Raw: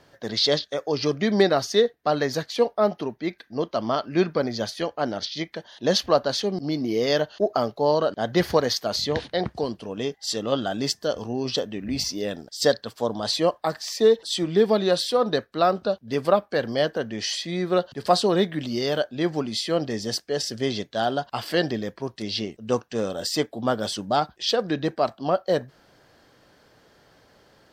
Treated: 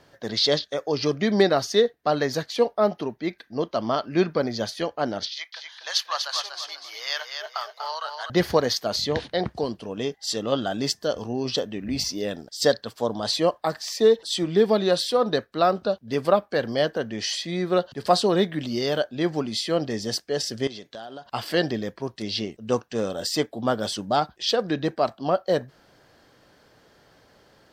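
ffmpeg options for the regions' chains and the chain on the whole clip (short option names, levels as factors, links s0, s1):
-filter_complex "[0:a]asettb=1/sr,asplit=3[s0][s1][s2];[s0]atrim=end=5.284[s3];[s1]atrim=start=5.28:end=8.3,asetpts=PTS-STARTPTS,afade=t=in:d=0.004:c=qsin,afade=t=out:st=3.016:d=0.004:c=qsin,highpass=f=990:w=0.5412,highpass=f=990:w=1.3066,aecho=1:1:243|486|729|972:0.501|0.18|0.065|0.0234,atrim=end_sample=133182[s4];[s2]atrim=start=8.296[s5];[s3][s4]acrossfade=d=0.004:c1=hsin:c2=qsin[s6];[s6][s5]acrossfade=d=0.004:c1=qsin:c2=hsin,asettb=1/sr,asplit=3[s7][s8][s9];[s7]atrim=end=20.674[s10];[s8]atrim=start=20.67:end=21.26,asetpts=PTS-STARTPTS,afade=t=in:d=0.004:c=qsin,afade=t=out:st=0.586:d=0.004:c=qsin,lowshelf=f=140:g=-11.5,acompressor=threshold=0.02:ratio=16:attack=3.2:release=140:knee=1:detection=peak[s11];[s9]atrim=start=21.256[s12];[s10][s11]acrossfade=d=0.004:c1=hsin:c2=qsin[s13];[s13][s12]acrossfade=d=0.004:c1=qsin:c2=hsin"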